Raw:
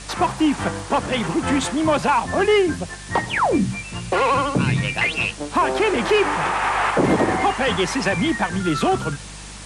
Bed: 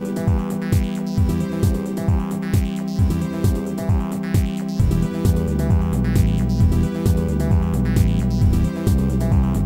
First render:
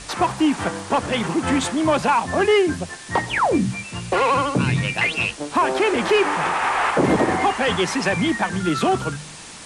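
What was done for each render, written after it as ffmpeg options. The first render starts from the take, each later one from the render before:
-af "bandreject=f=50:t=h:w=4,bandreject=f=100:t=h:w=4,bandreject=f=150:t=h:w=4,bandreject=f=200:t=h:w=4"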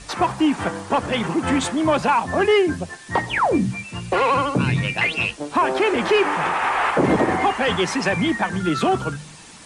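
-af "afftdn=nr=6:nf=-38"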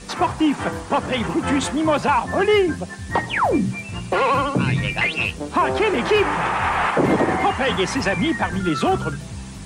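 -filter_complex "[1:a]volume=0.141[s0];[0:a][s0]amix=inputs=2:normalize=0"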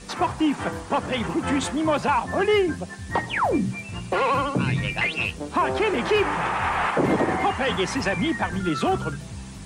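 -af "volume=0.668"

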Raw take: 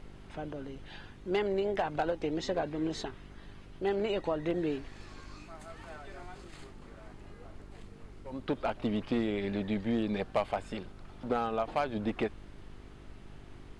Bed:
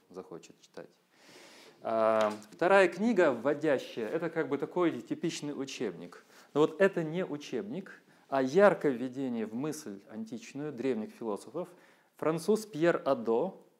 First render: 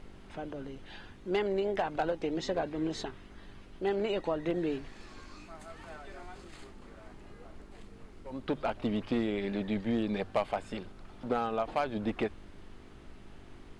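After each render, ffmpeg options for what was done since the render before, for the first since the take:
-af "bandreject=f=50:t=h:w=4,bandreject=f=100:t=h:w=4,bandreject=f=150:t=h:w=4"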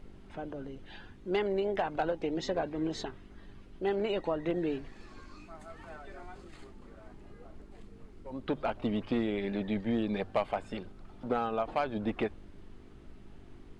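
-af "afftdn=nr=6:nf=-52"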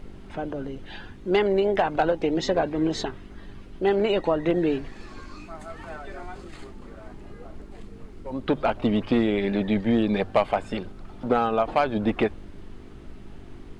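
-af "volume=2.82"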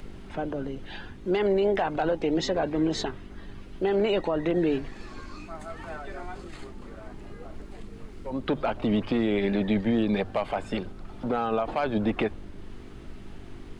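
-filter_complex "[0:a]acrossover=split=140|1400[s0][s1][s2];[s2]acompressor=mode=upward:threshold=0.002:ratio=2.5[s3];[s0][s1][s3]amix=inputs=3:normalize=0,alimiter=limit=0.15:level=0:latency=1:release=42"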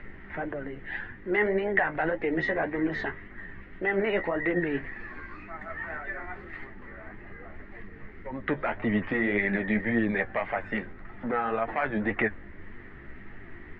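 -af "lowpass=f=1900:t=q:w=8.6,flanger=delay=8.5:depth=6.1:regen=38:speed=1.8:shape=sinusoidal"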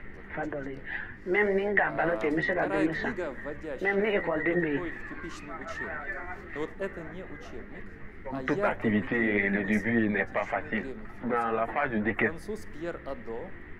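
-filter_complex "[1:a]volume=0.355[s0];[0:a][s0]amix=inputs=2:normalize=0"

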